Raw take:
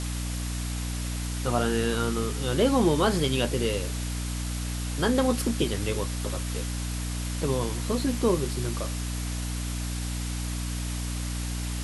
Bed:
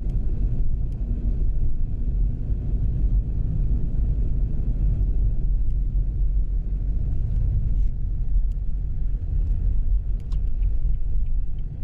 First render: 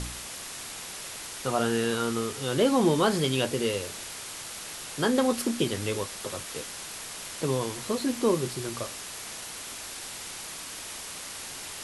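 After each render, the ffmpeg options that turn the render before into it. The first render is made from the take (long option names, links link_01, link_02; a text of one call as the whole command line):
ffmpeg -i in.wav -af "bandreject=frequency=60:width_type=h:width=4,bandreject=frequency=120:width_type=h:width=4,bandreject=frequency=180:width_type=h:width=4,bandreject=frequency=240:width_type=h:width=4,bandreject=frequency=300:width_type=h:width=4" out.wav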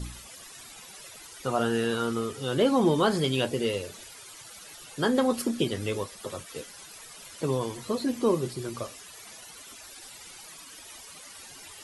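ffmpeg -i in.wav -af "afftdn=noise_reduction=14:noise_floor=-40" out.wav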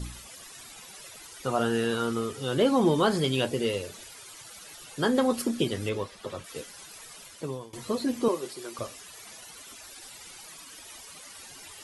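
ffmpeg -i in.wav -filter_complex "[0:a]asettb=1/sr,asplit=3[link_01][link_02][link_03];[link_01]atrim=end=5.894[link_04];[link_02]atrim=start=5.89:end=6.44,asetpts=PTS-STARTPTS,afade=type=in:duration=0.004:curve=qsin,afade=type=out:start_time=0.546:duration=0.004:curve=qsin,acrossover=split=5000[link_05][link_06];[link_06]acompressor=threshold=-57dB:ratio=4:attack=1:release=60[link_07];[link_05][link_07]amix=inputs=2:normalize=0[link_08];[link_03]atrim=start=6.436[link_09];[link_04][link_08]acrossfade=duration=0.004:curve1=hsin:curve2=qsin[link_10];[link_10][link_09]acrossfade=duration=0.004:curve1=qsin:curve2=hsin,asettb=1/sr,asplit=3[link_11][link_12][link_13];[link_11]atrim=end=8.284[link_14];[link_12]atrim=start=8.28:end=8.79,asetpts=PTS-STARTPTS,afade=type=in:duration=0.004:curve=qsin,afade=type=out:start_time=0.506:duration=0.004:curve=qsin,highpass=430[link_15];[link_13]atrim=start=8.786[link_16];[link_14][link_15]acrossfade=duration=0.004:curve1=hsin:curve2=qsin[link_17];[link_17][link_16]acrossfade=duration=0.004:curve1=qsin:curve2=hsin,asplit=2[link_18][link_19];[link_18]atrim=end=7.73,asetpts=PTS-STARTPTS,afade=type=out:start_time=7.15:duration=0.58:silence=0.0891251[link_20];[link_19]atrim=start=7.73,asetpts=PTS-STARTPTS,afade=type=in:duration=0.004:curve=hsin:silence=0.0891251[link_21];[link_20][link_21]concat=n=2:v=0:a=1" out.wav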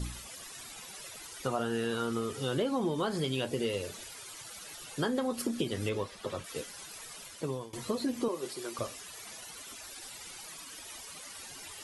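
ffmpeg -i in.wav -af "acompressor=threshold=-28dB:ratio=6" out.wav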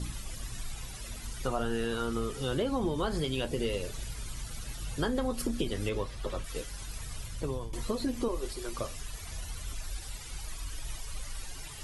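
ffmpeg -i in.wav -i bed.wav -filter_complex "[1:a]volume=-17.5dB[link_01];[0:a][link_01]amix=inputs=2:normalize=0" out.wav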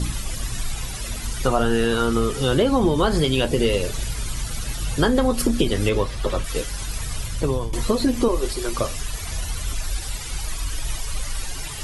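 ffmpeg -i in.wav -af "volume=12dB" out.wav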